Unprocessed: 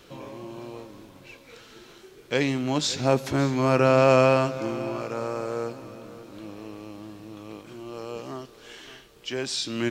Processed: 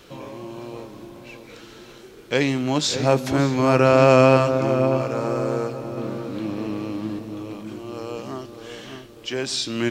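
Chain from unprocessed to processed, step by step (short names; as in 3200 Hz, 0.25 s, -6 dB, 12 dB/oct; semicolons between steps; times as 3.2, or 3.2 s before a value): 5.97–7.19 graphic EQ 125/250/1000/2000/4000 Hz +6/+11/+4/+5/+4 dB; darkening echo 0.602 s, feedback 49%, low-pass 840 Hz, level -6.5 dB; gain +3.5 dB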